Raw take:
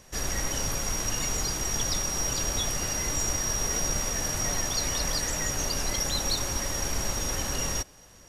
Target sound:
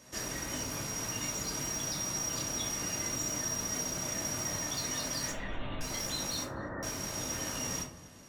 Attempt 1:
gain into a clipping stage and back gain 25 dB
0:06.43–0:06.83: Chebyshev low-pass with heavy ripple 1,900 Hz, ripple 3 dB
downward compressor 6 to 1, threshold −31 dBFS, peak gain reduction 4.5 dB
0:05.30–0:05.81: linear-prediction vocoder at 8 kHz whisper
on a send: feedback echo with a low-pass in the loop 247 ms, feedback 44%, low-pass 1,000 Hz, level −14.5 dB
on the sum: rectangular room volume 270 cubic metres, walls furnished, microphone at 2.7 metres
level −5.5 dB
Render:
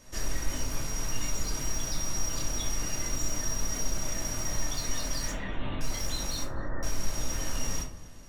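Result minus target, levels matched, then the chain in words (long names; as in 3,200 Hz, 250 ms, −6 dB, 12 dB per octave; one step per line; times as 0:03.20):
125 Hz band +4.0 dB
gain into a clipping stage and back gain 25 dB
0:06.43–0:06.83: Chebyshev low-pass with heavy ripple 1,900 Hz, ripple 3 dB
downward compressor 6 to 1, threshold −31 dBFS, peak gain reduction 4.5 dB
high-pass filter 110 Hz 12 dB per octave
0:05.30–0:05.81: linear-prediction vocoder at 8 kHz whisper
on a send: feedback echo with a low-pass in the loop 247 ms, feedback 44%, low-pass 1,000 Hz, level −14.5 dB
on the sum: rectangular room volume 270 cubic metres, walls furnished, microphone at 2.7 metres
level −5.5 dB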